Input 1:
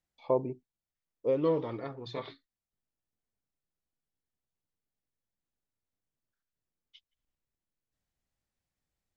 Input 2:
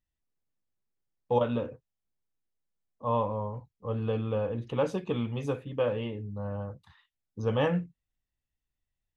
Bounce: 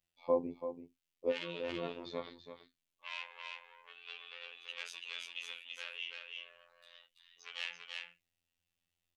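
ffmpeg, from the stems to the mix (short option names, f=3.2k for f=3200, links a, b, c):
-filter_complex "[0:a]volume=-0.5dB,asplit=2[a][b];[b]volume=-10dB[c];[1:a]asoftclip=type=tanh:threshold=-28dB,highpass=f=2.7k:t=q:w=2.7,volume=2.5dB,asplit=3[d][e][f];[e]volume=-3.5dB[g];[f]apad=whole_len=404311[h];[a][h]sidechaincompress=threshold=-56dB:ratio=3:attack=16:release=120[i];[c][g]amix=inputs=2:normalize=0,aecho=0:1:334:1[j];[i][d][j]amix=inputs=3:normalize=0,afftfilt=real='hypot(re,im)*cos(PI*b)':imag='0':win_size=2048:overlap=0.75"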